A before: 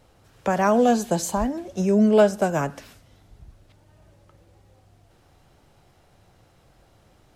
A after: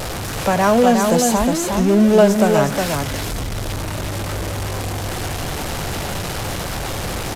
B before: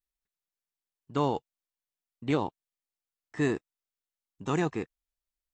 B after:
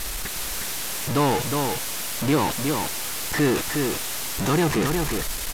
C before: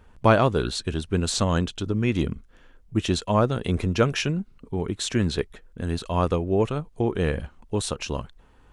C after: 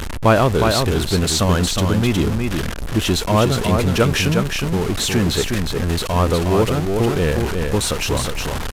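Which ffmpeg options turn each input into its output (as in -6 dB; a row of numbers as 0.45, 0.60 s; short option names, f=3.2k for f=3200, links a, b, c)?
-filter_complex "[0:a]aeval=exprs='val(0)+0.5*0.075*sgn(val(0))':c=same,asplit=2[a][b];[b]aecho=0:1:362:0.596[c];[a][c]amix=inputs=2:normalize=0,aresample=32000,aresample=44100,volume=2.5dB"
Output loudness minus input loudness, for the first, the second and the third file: +2.5, +7.5, +7.0 LU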